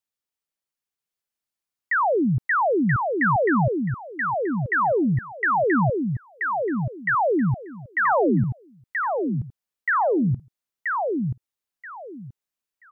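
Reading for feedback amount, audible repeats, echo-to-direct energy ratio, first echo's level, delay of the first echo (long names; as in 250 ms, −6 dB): 21%, 3, −4.0 dB, −4.0 dB, 980 ms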